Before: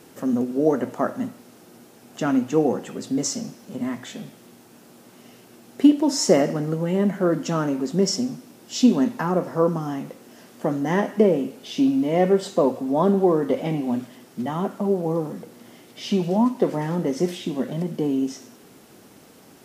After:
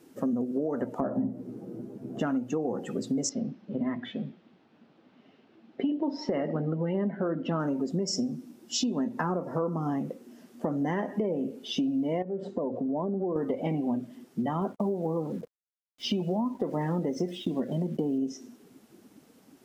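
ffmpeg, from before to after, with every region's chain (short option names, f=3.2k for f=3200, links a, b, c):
-filter_complex "[0:a]asettb=1/sr,asplit=3[a][b][c];[a]atrim=end=1.004[d];[b]atrim=start=1:end=2.2,asetpts=PTS-STARTPTS,afade=t=in:d=0.004:c=qsin,afade=t=out:st=1.196:d=0.004:c=qsin,tiltshelf=f=1.2k:g=9.5,asplit=2[e][f];[f]adelay=15,volume=-3dB[g];[e][g]amix=inputs=2:normalize=0,atrim=end_sample=52920[h];[c]atrim=start=2.196[i];[d][h]acrossfade=d=0.004:c1=hsin:c2=qsin[j];[j][i]acrossfade=d=0.004:c1=qsin:c2=hsin,asettb=1/sr,asplit=3[k][l][m];[k]atrim=end=3.294[n];[l]atrim=start=3.29:end=7.6,asetpts=PTS-STARTPTS,afade=t=in:d=0.004:c=qsin,afade=t=out:st=4.306:d=0.004:c=qsin,lowpass=f=3.8k:w=0.5412,lowpass=f=3.8k:w=1.3066,bandreject=f=60:t=h:w=6,bandreject=f=120:t=h:w=6,bandreject=f=180:t=h:w=6,bandreject=f=240:t=h:w=6,bandreject=f=300:t=h:w=6,bandreject=f=360:t=h:w=6,bandreject=f=420:t=h:w=6,bandreject=f=480:t=h:w=6[o];[m]atrim=start=7.596[p];[n][o]acrossfade=d=0.004:c1=hsin:c2=qsin[q];[q][p]acrossfade=d=0.004:c1=qsin:c2=hsin,asettb=1/sr,asplit=3[r][s][t];[r]atrim=end=12.224[u];[s]atrim=start=12.22:end=13.36,asetpts=PTS-STARTPTS,afade=t=in:d=0.004:c=qsin,afade=t=out:st=1.136:d=0.004:c=qsin,lowpass=f=1k:p=1,acompressor=threshold=-27dB:ratio=5:attack=3.2:release=140:knee=1:detection=peak[v];[t]atrim=start=13.356[w];[u][v]acrossfade=d=0.004:c1=hsin:c2=qsin[x];[x][w]acrossfade=d=0.004:c1=qsin:c2=hsin,asettb=1/sr,asplit=3[y][z][aa];[y]atrim=end=14.614[ab];[z]atrim=start=14.61:end=18.18,asetpts=PTS-STARTPTS,afade=t=in:d=0.004:c=qsin,afade=t=out:st=3.566:d=0.004:c=qsin,agate=range=-33dB:threshold=-35dB:ratio=3:release=100:detection=peak,acrusher=bits=6:mix=0:aa=0.5[ac];[aa]atrim=start=18.176[ad];[ab][ac]acrossfade=d=0.004:c1=hsin:c2=qsin[ae];[ae][ad]acrossfade=d=0.004:c1=qsin:c2=hsin,afftdn=nr=14:nf=-36,alimiter=limit=-14dB:level=0:latency=1:release=145,acompressor=threshold=-29dB:ratio=5,volume=2.5dB"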